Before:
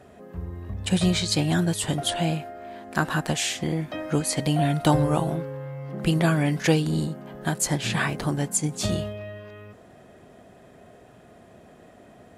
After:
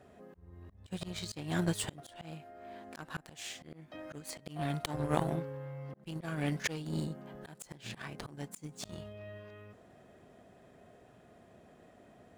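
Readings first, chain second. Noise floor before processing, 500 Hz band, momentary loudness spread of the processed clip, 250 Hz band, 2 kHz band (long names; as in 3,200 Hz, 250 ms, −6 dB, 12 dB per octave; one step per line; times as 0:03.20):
−51 dBFS, −13.0 dB, 25 LU, −14.5 dB, −13.5 dB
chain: running median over 3 samples
harmonic generator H 2 −20 dB, 4 −25 dB, 6 −38 dB, 7 −21 dB, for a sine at −6.5 dBFS
volume swells 519 ms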